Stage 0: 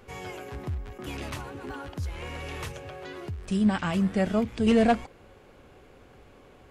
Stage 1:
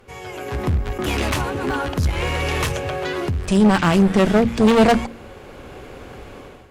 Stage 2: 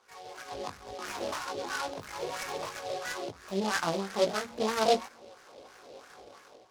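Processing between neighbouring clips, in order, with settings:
AGC gain up to 13.5 dB; one-sided clip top -22 dBFS, bottom -8 dBFS; de-hum 46.17 Hz, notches 6; gain +2.5 dB
wah 3 Hz 520–1700 Hz, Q 2.3; chorus 2.1 Hz, delay 17.5 ms, depth 2.9 ms; noise-modulated delay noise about 3600 Hz, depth 0.064 ms; gain -2 dB

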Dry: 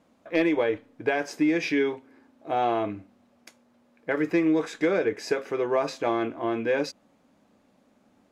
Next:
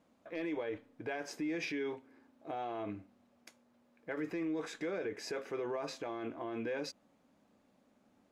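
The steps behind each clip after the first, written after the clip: limiter -23 dBFS, peak gain reduction 10.5 dB; gain -7 dB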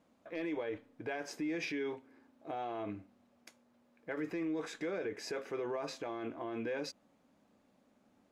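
nothing audible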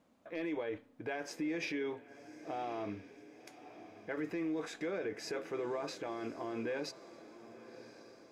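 diffused feedback echo 1.091 s, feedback 54%, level -15 dB

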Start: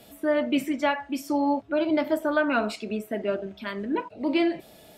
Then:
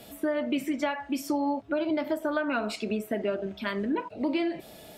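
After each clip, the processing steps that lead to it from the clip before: compressor, threshold -28 dBFS, peak gain reduction 9.5 dB; gain +3 dB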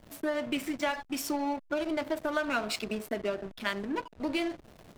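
tilt +2.5 dB/oct; backlash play -32.5 dBFS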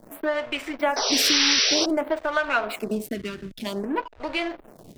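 painted sound noise, 0.96–1.86, 390–6000 Hz -26 dBFS; photocell phaser 0.53 Hz; gain +8.5 dB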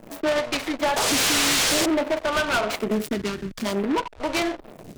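hard clip -23.5 dBFS, distortion -7 dB; noise-modulated delay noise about 1500 Hz, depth 0.053 ms; gain +5 dB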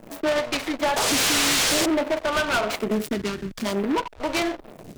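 companded quantiser 8-bit

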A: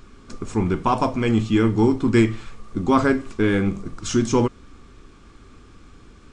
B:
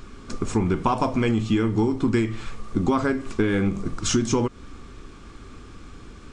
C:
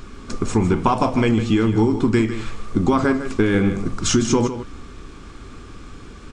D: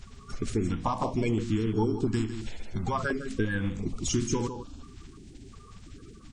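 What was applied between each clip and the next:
compressor 12:1, threshold -22 dBFS, peak gain reduction 12 dB; gain +4.5 dB
echo 0.155 s -11 dB; gain +4 dB
bin magnitudes rounded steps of 30 dB; stepped notch 2.9 Hz 310–2000 Hz; gain -8.5 dB

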